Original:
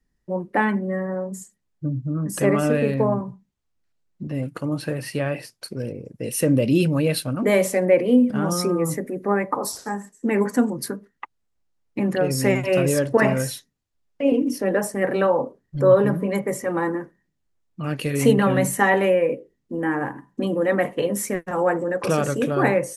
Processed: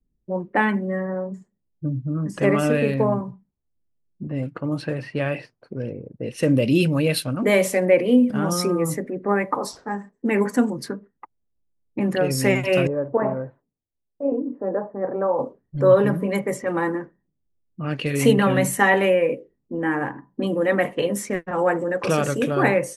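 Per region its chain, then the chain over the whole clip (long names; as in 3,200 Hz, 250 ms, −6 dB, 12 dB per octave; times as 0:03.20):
0:12.87–0:15.39: low-pass filter 1,100 Hz 24 dB per octave + low-shelf EQ 340 Hz −9 dB
whole clip: low-pass that shuts in the quiet parts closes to 410 Hz, open at −19.5 dBFS; dynamic equaliser 2,800 Hz, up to +4 dB, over −37 dBFS, Q 1.1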